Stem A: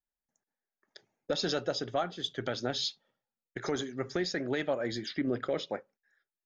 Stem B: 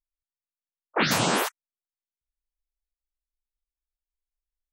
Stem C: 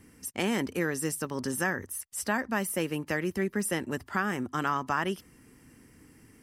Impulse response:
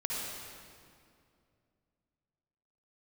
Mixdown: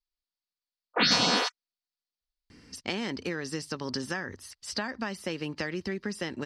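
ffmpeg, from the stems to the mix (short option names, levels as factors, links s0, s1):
-filter_complex "[1:a]aecho=1:1:4.1:0.53,volume=0.596[s0];[2:a]acompressor=threshold=0.0282:ratio=6,adelay=2500,volume=1.19[s1];[s0][s1]amix=inputs=2:normalize=0,lowpass=f=4600:t=q:w=4.3"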